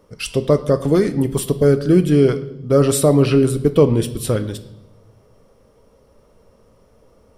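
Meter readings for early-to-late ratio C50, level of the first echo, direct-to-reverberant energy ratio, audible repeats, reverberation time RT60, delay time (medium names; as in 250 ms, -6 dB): 14.5 dB, no echo, 10.0 dB, no echo, 0.80 s, no echo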